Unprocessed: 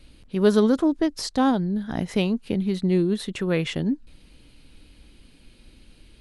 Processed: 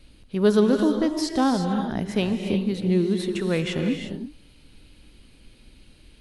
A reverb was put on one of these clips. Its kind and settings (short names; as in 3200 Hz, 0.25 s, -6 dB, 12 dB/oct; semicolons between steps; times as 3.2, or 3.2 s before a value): non-linear reverb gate 0.38 s rising, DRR 4.5 dB; gain -1 dB